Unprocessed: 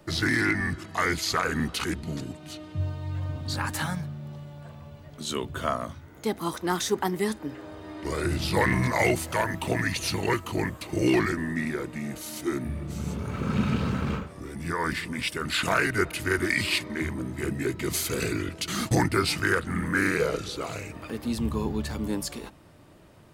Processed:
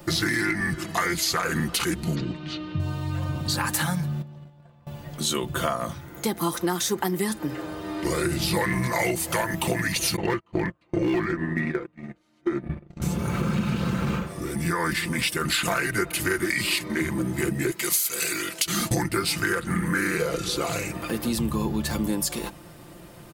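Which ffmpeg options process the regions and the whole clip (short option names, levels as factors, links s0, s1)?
-filter_complex "[0:a]asettb=1/sr,asplit=3[s0][s1][s2];[s0]atrim=end=2.154[s3];[s1]atrim=start=2.15:end=2.8,asetpts=PTS-STARTPTS,afade=t=in:d=0.004:c=qsin,afade=t=out:st=0.646:d=0.004:c=qsin,lowpass=f=4400:w=0.5412,lowpass=f=4400:w=1.3066,equalizer=f=730:t=o:w=0.34:g=-7[s4];[s2]atrim=start=2.796[s5];[s3][s4]acrossfade=d=0.004:c1=hsin:c2=qsin[s6];[s6][s5]acrossfade=d=0.004:c1=qsin:c2=hsin,asettb=1/sr,asplit=3[s7][s8][s9];[s7]atrim=end=4.224[s10];[s8]atrim=start=4.22:end=4.87,asetpts=PTS-STARTPTS,afade=t=in:d=0.004:c=qsin,afade=t=out:st=0.646:d=0.004:c=qsin,agate=range=0.112:threshold=0.01:ratio=16:release=100:detection=peak,aemphasis=mode=reproduction:type=50kf,acompressor=threshold=0.00447:ratio=16:attack=3.2:release=140:knee=1:detection=peak[s11];[s9]atrim=start=4.866[s12];[s10][s11]acrossfade=d=0.004:c1=hsin:c2=qsin[s13];[s13][s12]acrossfade=d=0.004:c1=qsin:c2=hsin,asettb=1/sr,asplit=3[s14][s15][s16];[s14]atrim=end=10.164[s17];[s15]atrim=start=10.16:end=13.02,asetpts=PTS-STARTPTS,afade=t=in:d=0.004:c=qsin,afade=t=out:st=2.856:d=0.004:c=qsin,lowpass=2500,agate=range=0.0282:threshold=0.0282:ratio=16:release=100:detection=peak,asoftclip=type=hard:threshold=0.126[s18];[s16]atrim=start=13.016[s19];[s17][s18]acrossfade=d=0.004:c1=hsin:c2=qsin[s20];[s20][s19]acrossfade=d=0.004:c1=qsin:c2=hsin,asettb=1/sr,asplit=3[s21][s22][s23];[s21]atrim=end=17.714[s24];[s22]atrim=start=17.71:end=18.67,asetpts=PTS-STARTPTS,afade=t=in:d=0.004:c=qsin,afade=t=out:st=0.956:d=0.004:c=qsin,highpass=f=1000:p=1,highshelf=f=4300:g=6[s25];[s23]atrim=start=18.666[s26];[s24][s25]acrossfade=d=0.004:c1=hsin:c2=qsin[s27];[s27][s26]acrossfade=d=0.004:c1=qsin:c2=hsin,highshelf=f=9200:g=11,aecho=1:1:5.8:0.51,acompressor=threshold=0.0355:ratio=6,volume=2.24"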